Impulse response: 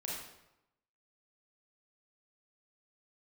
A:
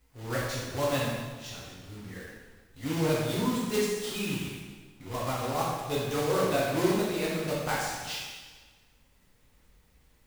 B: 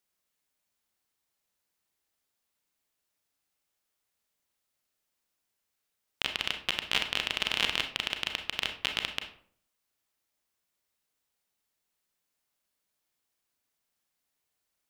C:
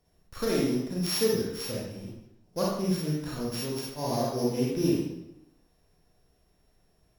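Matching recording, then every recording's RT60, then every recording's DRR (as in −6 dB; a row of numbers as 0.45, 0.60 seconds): C; 1.4, 0.55, 0.90 seconds; −7.0, 5.0, −5.0 decibels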